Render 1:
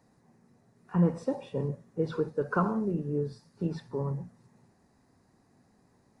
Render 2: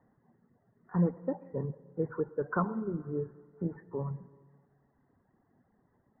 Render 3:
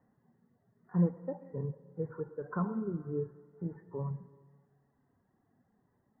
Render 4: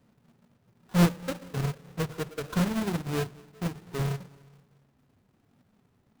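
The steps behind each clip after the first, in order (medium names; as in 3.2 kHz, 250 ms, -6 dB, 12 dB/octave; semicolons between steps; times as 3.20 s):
reverb removal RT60 1 s; steep low-pass 2 kHz 96 dB/octave; reverberation RT60 1.9 s, pre-delay 83 ms, DRR 18.5 dB; trim -2.5 dB
harmonic-percussive split percussive -10 dB
square wave that keeps the level; in parallel at -6.5 dB: sample-rate reducer 1.1 kHz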